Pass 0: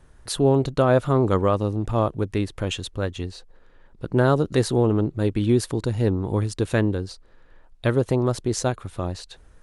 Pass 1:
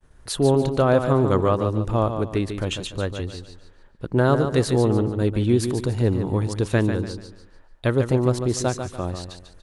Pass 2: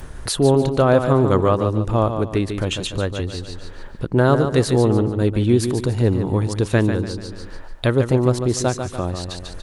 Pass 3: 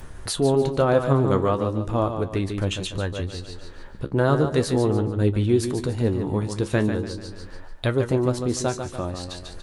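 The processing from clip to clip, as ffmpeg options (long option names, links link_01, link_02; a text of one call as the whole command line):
ffmpeg -i in.wav -af "aecho=1:1:145|290|435|580:0.398|0.135|0.046|0.0156,agate=range=-33dB:threshold=-48dB:ratio=3:detection=peak" out.wav
ffmpeg -i in.wav -af "acompressor=mode=upward:threshold=-22dB:ratio=2.5,volume=3dB" out.wav
ffmpeg -i in.wav -af "flanger=delay=9.8:depth=5.3:regen=55:speed=0.38:shape=triangular" out.wav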